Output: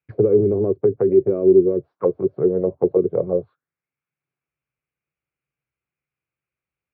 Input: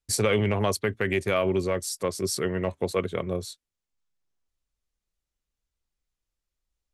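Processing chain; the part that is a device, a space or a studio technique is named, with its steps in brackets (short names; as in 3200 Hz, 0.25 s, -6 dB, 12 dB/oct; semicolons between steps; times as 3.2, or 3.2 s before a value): envelope filter bass rig (envelope low-pass 380–2400 Hz down, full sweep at -22 dBFS; speaker cabinet 86–2300 Hz, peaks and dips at 90 Hz -7 dB, 140 Hz +8 dB, 220 Hz -6 dB, 640 Hz -3 dB, 940 Hz -5 dB, 1900 Hz -8 dB); gain +3 dB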